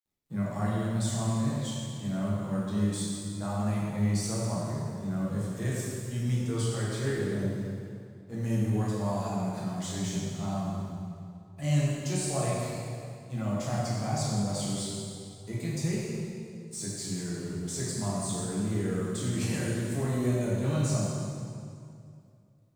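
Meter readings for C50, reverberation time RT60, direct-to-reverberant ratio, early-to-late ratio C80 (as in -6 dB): -2.5 dB, 2.4 s, -7.0 dB, -0.5 dB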